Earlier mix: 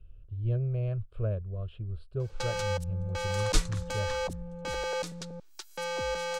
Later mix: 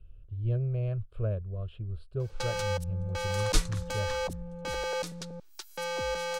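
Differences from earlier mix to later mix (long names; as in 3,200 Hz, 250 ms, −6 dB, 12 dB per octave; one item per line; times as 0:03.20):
background: add parametric band 7,400 Hz −2.5 dB 0.42 octaves
master: add high-shelf EQ 11,000 Hz +7.5 dB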